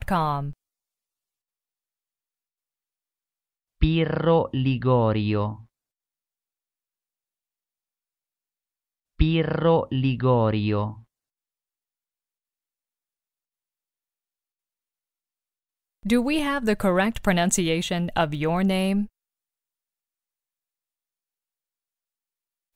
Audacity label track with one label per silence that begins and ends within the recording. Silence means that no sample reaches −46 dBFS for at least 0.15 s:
0.530000	3.810000	silence
5.640000	9.190000	silence
11.030000	16.030000	silence